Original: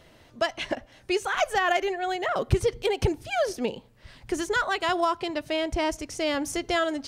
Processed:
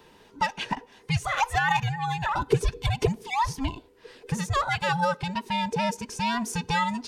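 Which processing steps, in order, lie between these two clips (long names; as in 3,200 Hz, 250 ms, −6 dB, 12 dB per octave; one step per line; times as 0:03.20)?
frequency inversion band by band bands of 500 Hz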